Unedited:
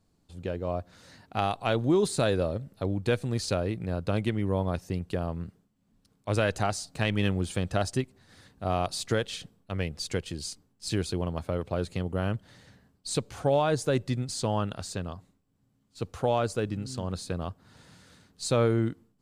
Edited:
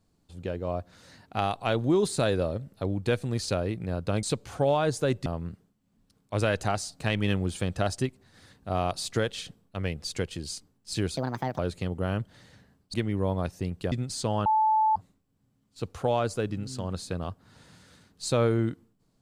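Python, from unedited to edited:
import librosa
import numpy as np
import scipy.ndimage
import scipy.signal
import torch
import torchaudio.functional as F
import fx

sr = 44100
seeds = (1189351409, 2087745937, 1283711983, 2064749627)

y = fx.edit(x, sr, fx.swap(start_s=4.23, length_s=0.98, other_s=13.08, other_length_s=1.03),
    fx.speed_span(start_s=11.12, length_s=0.61, speed=1.46),
    fx.bleep(start_s=14.65, length_s=0.5, hz=871.0, db=-19.5), tone=tone)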